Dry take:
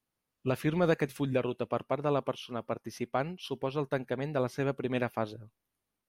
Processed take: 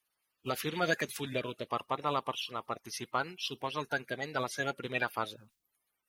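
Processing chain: coarse spectral quantiser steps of 30 dB; tilt shelf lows -9 dB

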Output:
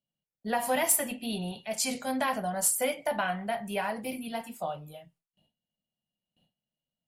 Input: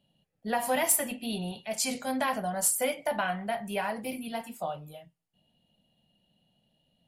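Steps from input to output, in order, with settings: gate with hold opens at -59 dBFS

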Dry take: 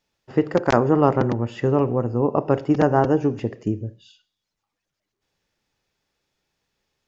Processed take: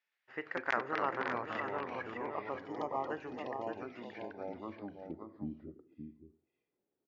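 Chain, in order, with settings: spectral selection erased 1.84–3.10 s, 1.3–2.9 kHz; ever faster or slower copies 116 ms, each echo -3 st, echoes 2; band-pass sweep 1.9 kHz -> 350 Hz, 4.30–5.34 s; on a send: delay 573 ms -7 dB; on the sum: trim -3 dB

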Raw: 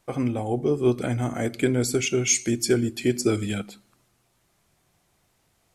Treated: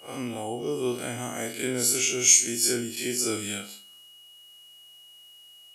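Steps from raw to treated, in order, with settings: spectral blur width 94 ms; RIAA curve recording; whistle 2.9 kHz -49 dBFS

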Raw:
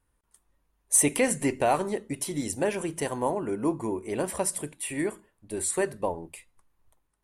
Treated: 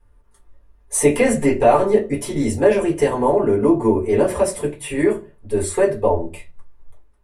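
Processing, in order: treble shelf 4.7 kHz -11 dB; in parallel at +0.5 dB: peak limiter -21 dBFS, peak gain reduction 8.5 dB; on the sum: reverberation RT60 0.25 s, pre-delay 4 ms, DRR -4 dB; trim -2.5 dB

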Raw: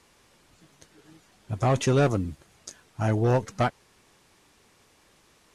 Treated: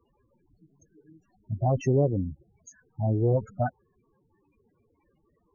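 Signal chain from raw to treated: loudest bins only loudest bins 8; loudspeaker Doppler distortion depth 0.13 ms

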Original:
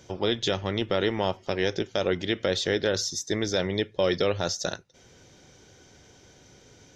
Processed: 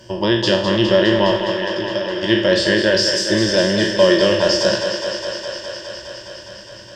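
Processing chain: spectral sustain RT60 0.59 s; 1.37–2.23 s: compression, threshold -30 dBFS, peak gain reduction 11 dB; rippled EQ curve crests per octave 1.3, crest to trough 15 dB; thinning echo 206 ms, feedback 83%, high-pass 200 Hz, level -8 dB; trim +5.5 dB

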